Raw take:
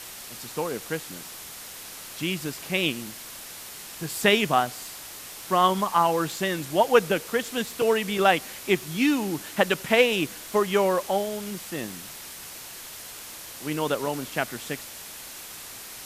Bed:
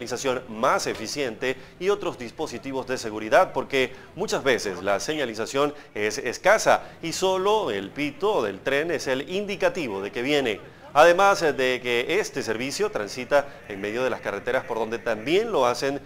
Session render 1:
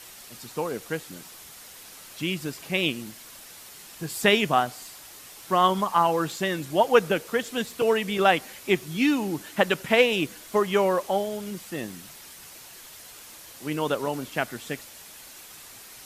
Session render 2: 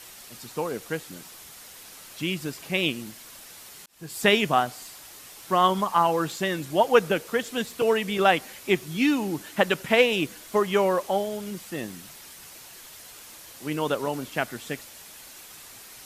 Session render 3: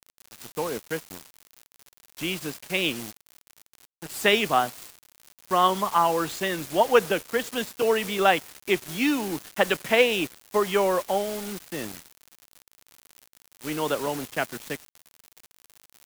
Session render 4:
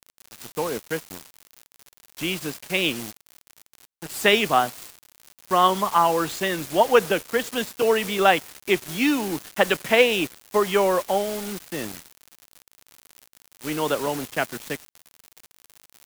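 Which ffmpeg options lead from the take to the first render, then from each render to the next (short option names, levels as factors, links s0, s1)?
-af "afftdn=nr=6:nf=-41"
-filter_complex "[0:a]asplit=2[s0][s1];[s0]atrim=end=3.86,asetpts=PTS-STARTPTS,afade=t=out:st=3.856:d=0.004:c=hsin[s2];[s1]atrim=start=3.86,asetpts=PTS-STARTPTS,afade=t=in:d=0.4[s3];[s2][s3]concat=n=2:v=0:a=1"
-filter_complex "[0:a]acrossover=split=230|620|5500[s0][s1][s2][s3];[s0]asoftclip=type=tanh:threshold=0.0106[s4];[s4][s1][s2][s3]amix=inputs=4:normalize=0,acrusher=bits=5:mix=0:aa=0.000001"
-af "volume=1.33,alimiter=limit=0.708:level=0:latency=1"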